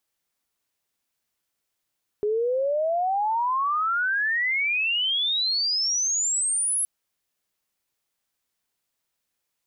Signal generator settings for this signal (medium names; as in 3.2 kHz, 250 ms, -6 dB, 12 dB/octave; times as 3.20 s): sweep logarithmic 410 Hz -> 11 kHz -21 dBFS -> -21.5 dBFS 4.62 s